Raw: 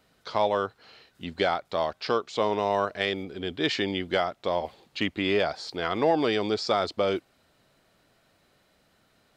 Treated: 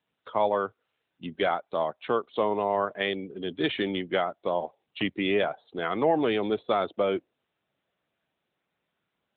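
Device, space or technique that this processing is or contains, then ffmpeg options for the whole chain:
mobile call with aggressive noise cancelling: -af "highpass=f=110:w=0.5412,highpass=f=110:w=1.3066,afftdn=nr=24:nf=-39" -ar 8000 -c:a libopencore_amrnb -b:a 10200

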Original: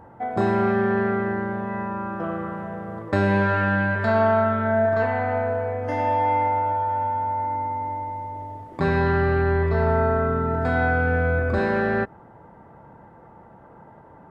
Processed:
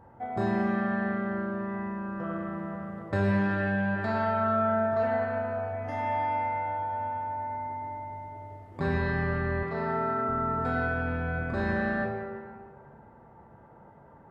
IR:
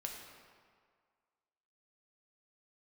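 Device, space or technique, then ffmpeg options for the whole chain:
stairwell: -filter_complex "[1:a]atrim=start_sample=2205[s0];[0:a][s0]afir=irnorm=-1:irlink=0,asettb=1/sr,asplit=3[s1][s2][s3];[s1]atrim=end=9.634[s4];[s2]atrim=start=9.63:end=10.29,asetpts=PTS-STARTPTS,afade=t=in:d=0.004:c=qsin,afade=t=out:st=0.656:d=0.004:c=qsin,highpass=f=130:w=0.5412,highpass=f=130:w=1.3066[s5];[s3]atrim=start=10.286[s6];[s4][s5]acrossfade=d=0.004:c1=hsin:c2=qsin[s7];[s7][s6]acrossfade=d=0.004:c1=qsin:c2=hsin,equalizer=f=71:t=o:w=1.8:g=5,volume=0.562"

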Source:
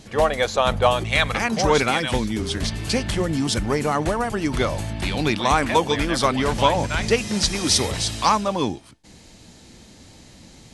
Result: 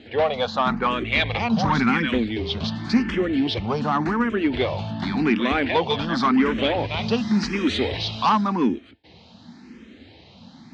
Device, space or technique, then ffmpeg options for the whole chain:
barber-pole phaser into a guitar amplifier: -filter_complex "[0:a]asettb=1/sr,asplit=3[s0][s1][s2];[s0]atrim=end=0.984[s3];[s1]atrim=start=0.98:end=2.09,asetpts=PTS-STARTPTS,afade=t=in:d=0.004:c=qsin,afade=t=out:st=1.106:d=0.004:c=qsin,asubboost=boost=10:cutoff=190[s4];[s2]atrim=start=2.086[s5];[s3][s4]acrossfade=d=0.004:c1=hsin:c2=qsin[s6];[s6][s5]acrossfade=d=0.004:c1=qsin:c2=hsin,asplit=2[s7][s8];[s8]afreqshift=0.9[s9];[s7][s9]amix=inputs=2:normalize=1,asoftclip=type=tanh:threshold=0.158,highpass=97,equalizer=f=130:t=q:w=4:g=-7,equalizer=f=240:t=q:w=4:g=7,equalizer=f=580:t=q:w=4:g=-4,lowpass=f=4000:w=0.5412,lowpass=f=4000:w=1.3066,volume=1.58"

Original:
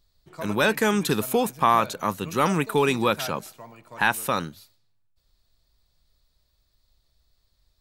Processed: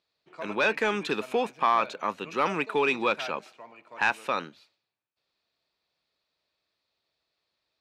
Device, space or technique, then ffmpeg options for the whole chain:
intercom: -af "highpass=310,lowpass=3800,equalizer=f=2500:t=o:w=0.33:g=6.5,asoftclip=type=tanh:threshold=0.355,volume=0.75"

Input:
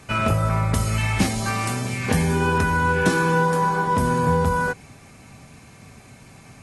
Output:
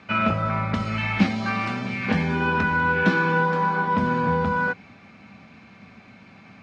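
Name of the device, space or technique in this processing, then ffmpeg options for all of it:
guitar cabinet: -af "highpass=110,equalizer=f=140:t=q:w=4:g=-9,equalizer=f=200:t=q:w=4:g=9,equalizer=f=410:t=q:w=4:g=-4,equalizer=f=1400:t=q:w=4:g=4,equalizer=f=2300:t=q:w=4:g=4,lowpass=f=4300:w=0.5412,lowpass=f=4300:w=1.3066,volume=0.794"

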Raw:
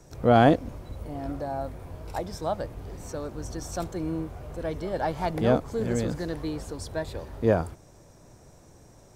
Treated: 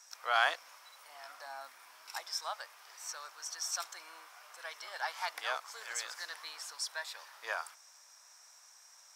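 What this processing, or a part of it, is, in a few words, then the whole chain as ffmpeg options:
headphones lying on a table: -filter_complex "[0:a]highpass=f=1100:w=0.5412,highpass=f=1100:w=1.3066,equalizer=f=5400:t=o:w=0.25:g=8,asettb=1/sr,asplit=3[s0][s1][s2];[s0]atrim=end=1.464[s3];[s1]atrim=start=1.46:end=2.2,asetpts=PTS-STARTPTS,afade=t=in:d=0.004:c=qsin,afade=t=out:st=0.736:d=0.004:c=qsin,lowshelf=f=360:t=q:w=1.5:g=10.5[s4];[s2]atrim=start=2.196[s5];[s3][s4]acrossfade=d=0.004:c1=hsin:c2=qsin[s6];[s6][s5]acrossfade=d=0.004:c1=qsin:c2=hsin,volume=1.12"

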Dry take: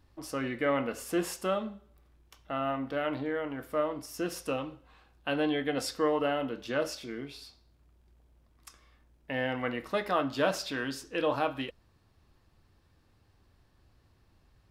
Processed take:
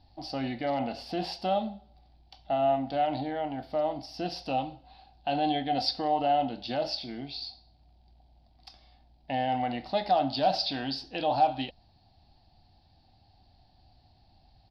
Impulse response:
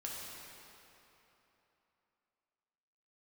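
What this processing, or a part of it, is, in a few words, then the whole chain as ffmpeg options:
clipper into limiter: -af "asoftclip=type=hard:threshold=0.126,alimiter=limit=0.0794:level=0:latency=1:release=34,firequalizer=gain_entry='entry(250,0);entry(460,-11);entry(750,14);entry(1100,-13);entry(4600,11);entry(6800,-25)':delay=0.05:min_phase=1,volume=1.41"

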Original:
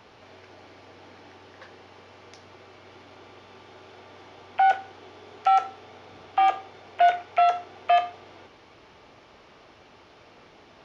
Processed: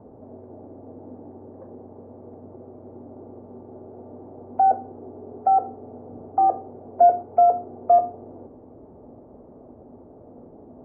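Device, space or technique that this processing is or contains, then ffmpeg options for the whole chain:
under water: -af "lowpass=f=660:w=0.5412,lowpass=f=660:w=1.3066,equalizer=f=250:t=o:w=0.25:g=9.5,volume=2.66"

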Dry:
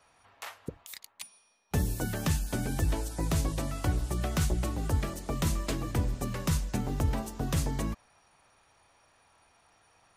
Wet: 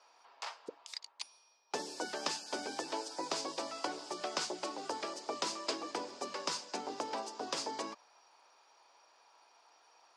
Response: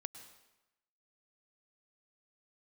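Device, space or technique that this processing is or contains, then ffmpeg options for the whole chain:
phone speaker on a table: -af "highpass=f=350:w=0.5412,highpass=f=350:w=1.3066,equalizer=f=930:t=q:w=4:g=6,equalizer=f=1900:t=q:w=4:g=-4,equalizer=f=4900:t=q:w=4:g=10,lowpass=f=7300:w=0.5412,lowpass=f=7300:w=1.3066,volume=0.794"

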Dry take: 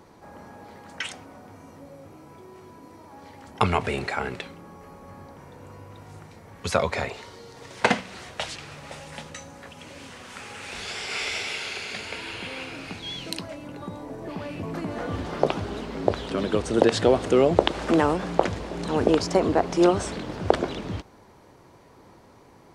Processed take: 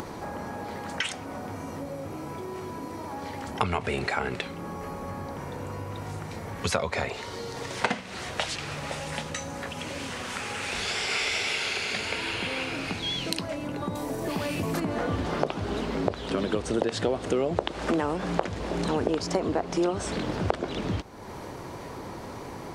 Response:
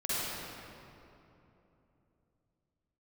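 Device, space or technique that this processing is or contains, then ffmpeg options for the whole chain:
upward and downward compression: -filter_complex "[0:a]asettb=1/sr,asplit=3[s0][s1][s2];[s0]atrim=end=13.954[s3];[s1]atrim=start=13.95:end=14.8,asetpts=PTS-STARTPTS,afade=t=in:d=0.004:c=qsin,afade=t=out:st=0.846:d=0.004:c=qsin,aemphasis=mode=production:type=75kf[s4];[s2]atrim=start=14.796[s5];[s3][s4]acrossfade=d=0.004:c1=hsin:c2=qsin[s6];[s6][s5]acrossfade=d=0.004:c1=qsin:c2=hsin,acompressor=mode=upward:threshold=0.0224:ratio=2.5,acompressor=threshold=0.0355:ratio=4,volume=1.68"

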